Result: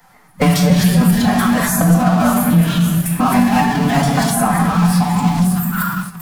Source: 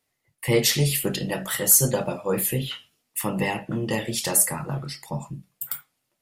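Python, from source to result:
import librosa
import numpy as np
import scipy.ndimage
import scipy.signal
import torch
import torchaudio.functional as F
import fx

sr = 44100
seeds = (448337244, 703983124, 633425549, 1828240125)

p1 = fx.local_reverse(x, sr, ms=139.0)
p2 = fx.band_shelf(p1, sr, hz=990.0, db=15.0, octaves=1.7)
p3 = p2 + fx.echo_wet_highpass(p2, sr, ms=565, feedback_pct=47, hz=1600.0, wet_db=-19, dry=0)
p4 = fx.room_shoebox(p3, sr, seeds[0], volume_m3=390.0, walls='mixed', distance_m=1.3)
p5 = fx.fuzz(p4, sr, gain_db=37.0, gate_db=-42.0)
p6 = p4 + (p5 * librosa.db_to_amplitude(-11.0))
p7 = fx.pitch_keep_formants(p6, sr, semitones=4.0)
p8 = fx.low_shelf_res(p7, sr, hz=280.0, db=9.0, q=1.5)
p9 = fx.band_squash(p8, sr, depth_pct=70)
y = p9 * librosa.db_to_amplitude(-3.5)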